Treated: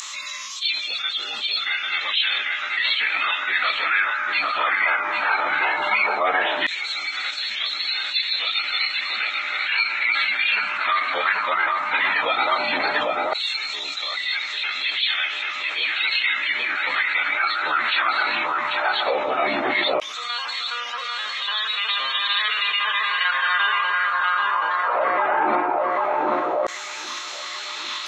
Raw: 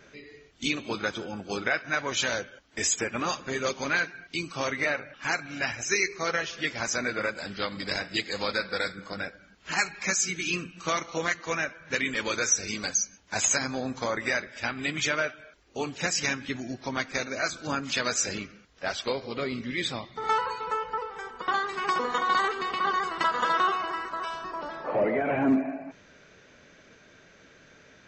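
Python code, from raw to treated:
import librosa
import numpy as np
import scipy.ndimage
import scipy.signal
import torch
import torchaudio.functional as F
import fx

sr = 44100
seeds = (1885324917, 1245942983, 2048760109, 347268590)

p1 = scipy.signal.sosfilt(scipy.signal.butter(2, 44.0, 'highpass', fs=sr, output='sos'), x)
p2 = fx.low_shelf(p1, sr, hz=450.0, db=10.5)
p3 = p2 + fx.echo_filtered(p2, sr, ms=792, feedback_pct=65, hz=3000.0, wet_db=-9.5, dry=0)
p4 = p3 + 10.0 ** (-48.0 / 20.0) * np.sin(2.0 * np.pi * 1100.0 * np.arange(len(p3)) / sr)
p5 = fx.pitch_keep_formants(p4, sr, semitones=-10.5)
p6 = fx.filter_lfo_highpass(p5, sr, shape='saw_down', hz=0.15, low_hz=620.0, high_hz=6700.0, q=1.7)
p7 = fx.env_flatten(p6, sr, amount_pct=70)
y = p7 * librosa.db_to_amplitude(1.5)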